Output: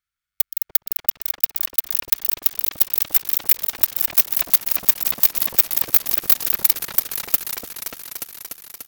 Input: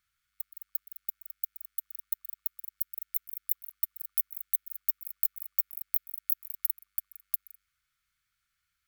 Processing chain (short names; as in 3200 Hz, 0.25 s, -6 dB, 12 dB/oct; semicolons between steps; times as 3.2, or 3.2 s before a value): sample leveller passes 5; repeats that get brighter 0.293 s, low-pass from 750 Hz, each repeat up 2 oct, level 0 dB; gain +3 dB